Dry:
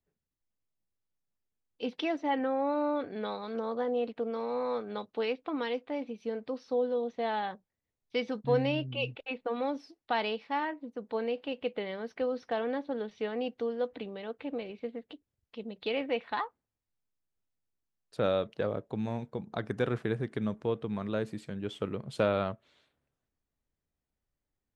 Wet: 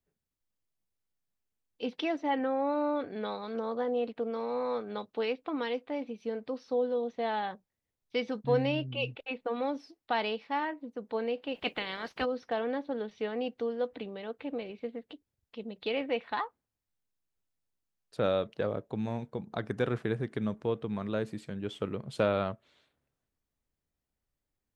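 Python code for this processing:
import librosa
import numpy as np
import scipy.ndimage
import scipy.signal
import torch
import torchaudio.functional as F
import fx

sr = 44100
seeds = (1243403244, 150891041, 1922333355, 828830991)

y = fx.spec_clip(x, sr, under_db=22, at=(11.54, 12.24), fade=0.02)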